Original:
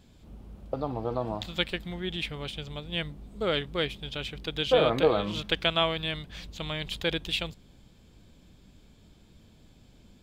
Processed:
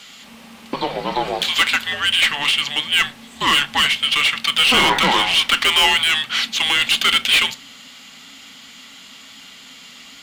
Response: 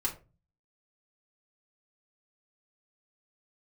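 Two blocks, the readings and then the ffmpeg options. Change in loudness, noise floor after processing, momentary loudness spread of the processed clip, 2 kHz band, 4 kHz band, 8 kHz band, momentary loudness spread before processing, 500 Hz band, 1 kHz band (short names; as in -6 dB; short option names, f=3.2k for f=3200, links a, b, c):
+14.0 dB, -42 dBFS, 10 LU, +18.0 dB, +17.0 dB, +24.5 dB, 14 LU, -1.0 dB, +14.0 dB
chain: -filter_complex "[0:a]afreqshift=-280,tiltshelf=f=630:g=-9,asplit=2[a][b];[b]highpass=f=720:p=1,volume=29dB,asoftclip=type=tanh:threshold=-2.5dB[c];[a][c]amix=inputs=2:normalize=0,lowpass=f=5.2k:p=1,volume=-6dB,asplit=2[d][e];[1:a]atrim=start_sample=2205[f];[e][f]afir=irnorm=-1:irlink=0,volume=-11dB[g];[d][g]amix=inputs=2:normalize=0,volume=-5dB"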